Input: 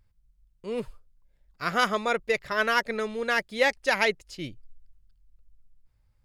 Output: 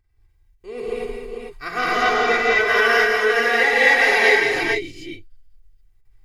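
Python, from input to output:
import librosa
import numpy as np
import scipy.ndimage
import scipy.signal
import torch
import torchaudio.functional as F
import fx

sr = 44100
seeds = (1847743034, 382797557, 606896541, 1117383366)

y = fx.cvsd(x, sr, bps=32000, at=(1.78, 2.42))
y = fx.peak_eq(y, sr, hz=2000.0, db=7.5, octaves=0.33)
y = y + 0.82 * np.pad(y, (int(2.6 * sr / 1000.0), 0))[:len(y)]
y = fx.echo_multitap(y, sr, ms=(51, 102, 139, 171, 449), db=(-15.5, -11.0, -10.5, -5.5, -4.5))
y = fx.rev_gated(y, sr, seeds[0], gate_ms=270, shape='rising', drr_db=-7.5)
y = fx.end_taper(y, sr, db_per_s=190.0)
y = y * 10.0 ** (-4.5 / 20.0)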